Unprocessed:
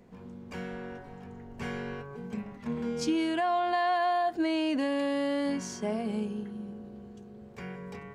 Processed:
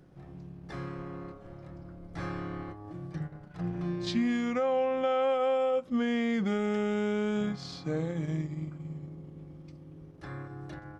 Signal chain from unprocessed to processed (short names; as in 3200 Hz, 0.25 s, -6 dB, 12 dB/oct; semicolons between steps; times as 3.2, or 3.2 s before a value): transient shaper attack -1 dB, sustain -6 dB; speed mistake 45 rpm record played at 33 rpm